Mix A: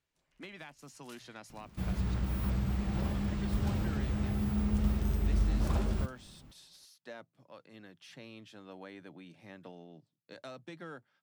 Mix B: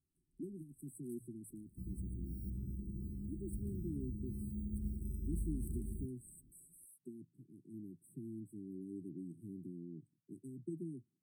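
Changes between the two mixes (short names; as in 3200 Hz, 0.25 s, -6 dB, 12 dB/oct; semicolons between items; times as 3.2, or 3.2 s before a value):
speech +5.5 dB; second sound -11.0 dB; master: add brick-wall FIR band-stop 400–7900 Hz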